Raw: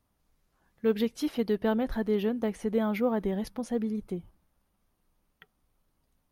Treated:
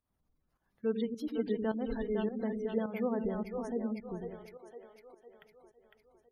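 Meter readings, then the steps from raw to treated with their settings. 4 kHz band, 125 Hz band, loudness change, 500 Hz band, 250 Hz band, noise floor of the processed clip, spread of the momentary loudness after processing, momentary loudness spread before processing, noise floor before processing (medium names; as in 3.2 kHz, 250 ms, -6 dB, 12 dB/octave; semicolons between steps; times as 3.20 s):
-10.0 dB, -5.5 dB, -5.5 dB, -5.0 dB, -5.5 dB, -80 dBFS, 15 LU, 6 LU, -76 dBFS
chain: two-band feedback delay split 390 Hz, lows 95 ms, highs 505 ms, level -4 dB; spectral gate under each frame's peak -30 dB strong; volume shaper 105 bpm, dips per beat 1, -12 dB, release 213 ms; trim -6.5 dB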